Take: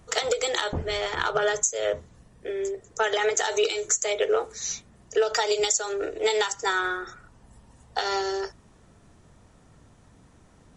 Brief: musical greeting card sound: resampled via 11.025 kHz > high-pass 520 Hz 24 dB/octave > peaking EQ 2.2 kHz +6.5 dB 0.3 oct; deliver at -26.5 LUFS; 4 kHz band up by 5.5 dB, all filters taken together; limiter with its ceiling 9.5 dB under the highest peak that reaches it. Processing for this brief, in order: peaking EQ 4 kHz +6.5 dB; peak limiter -16.5 dBFS; resampled via 11.025 kHz; high-pass 520 Hz 24 dB/octave; peaking EQ 2.2 kHz +6.5 dB 0.3 oct; trim +2 dB

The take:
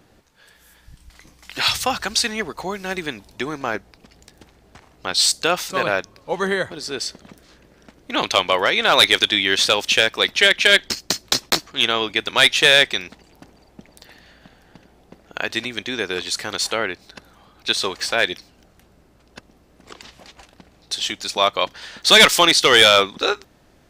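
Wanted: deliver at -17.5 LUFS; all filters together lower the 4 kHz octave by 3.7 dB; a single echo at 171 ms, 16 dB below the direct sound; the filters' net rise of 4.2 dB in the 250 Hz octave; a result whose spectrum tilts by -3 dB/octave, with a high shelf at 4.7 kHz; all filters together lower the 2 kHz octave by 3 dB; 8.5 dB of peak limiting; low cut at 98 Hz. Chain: high-pass 98 Hz; peaking EQ 250 Hz +6 dB; peaking EQ 2 kHz -3.5 dB; peaking EQ 4 kHz -6.5 dB; treble shelf 4.7 kHz +7 dB; peak limiter -10 dBFS; delay 171 ms -16 dB; trim +5.5 dB

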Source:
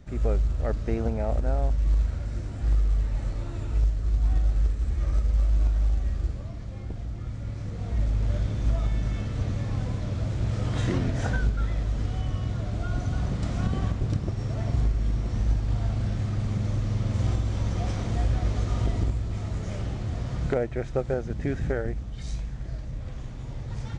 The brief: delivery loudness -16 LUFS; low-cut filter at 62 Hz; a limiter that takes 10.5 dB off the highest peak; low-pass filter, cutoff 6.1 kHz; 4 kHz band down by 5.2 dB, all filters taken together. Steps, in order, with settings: high-pass 62 Hz; low-pass 6.1 kHz; peaking EQ 4 kHz -6 dB; trim +17.5 dB; peak limiter -6 dBFS

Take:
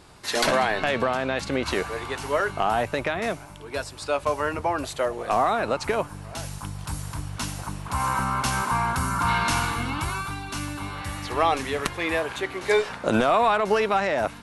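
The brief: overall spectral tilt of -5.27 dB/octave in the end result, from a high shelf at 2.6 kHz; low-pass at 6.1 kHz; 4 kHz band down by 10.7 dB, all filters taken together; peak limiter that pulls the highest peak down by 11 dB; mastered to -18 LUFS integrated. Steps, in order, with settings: low-pass 6.1 kHz; treble shelf 2.6 kHz -8.5 dB; peaking EQ 4 kHz -6 dB; trim +14 dB; peak limiter -7.5 dBFS

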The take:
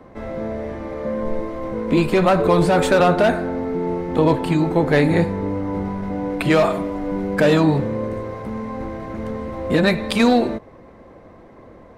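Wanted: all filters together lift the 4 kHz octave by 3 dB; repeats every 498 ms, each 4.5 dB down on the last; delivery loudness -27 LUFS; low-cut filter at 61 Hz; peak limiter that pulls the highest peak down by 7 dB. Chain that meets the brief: high-pass 61 Hz; peaking EQ 4 kHz +3.5 dB; peak limiter -10 dBFS; feedback delay 498 ms, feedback 60%, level -4.5 dB; trim -7 dB

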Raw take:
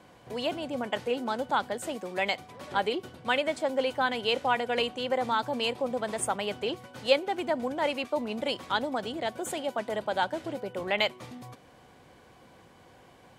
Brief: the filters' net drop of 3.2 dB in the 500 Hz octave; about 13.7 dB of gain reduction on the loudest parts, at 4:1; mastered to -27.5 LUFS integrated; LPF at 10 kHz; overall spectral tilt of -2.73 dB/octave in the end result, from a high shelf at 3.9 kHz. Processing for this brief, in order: low-pass 10 kHz; peaking EQ 500 Hz -4 dB; treble shelf 3.9 kHz +8 dB; compression 4:1, threshold -37 dBFS; trim +12 dB

